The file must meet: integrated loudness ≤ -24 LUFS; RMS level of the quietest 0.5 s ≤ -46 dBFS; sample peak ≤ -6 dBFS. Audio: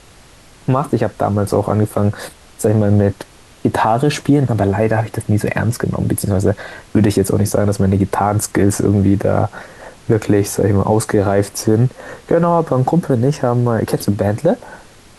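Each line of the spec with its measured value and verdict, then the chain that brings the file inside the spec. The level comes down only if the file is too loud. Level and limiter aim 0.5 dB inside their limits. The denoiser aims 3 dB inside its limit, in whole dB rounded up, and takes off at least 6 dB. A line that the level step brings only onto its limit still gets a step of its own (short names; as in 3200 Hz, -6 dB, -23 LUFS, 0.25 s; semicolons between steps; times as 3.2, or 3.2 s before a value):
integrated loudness -16.0 LUFS: fail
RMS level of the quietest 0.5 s -44 dBFS: fail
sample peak -3.0 dBFS: fail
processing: gain -8.5 dB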